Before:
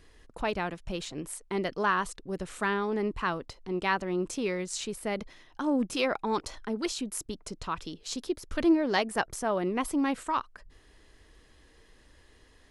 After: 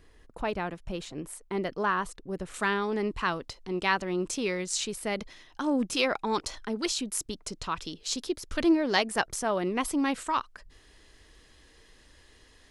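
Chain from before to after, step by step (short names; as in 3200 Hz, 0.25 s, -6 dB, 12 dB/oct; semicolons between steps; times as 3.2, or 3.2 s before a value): bell 5400 Hz -4 dB 2.7 oct, from 2.54 s +5.5 dB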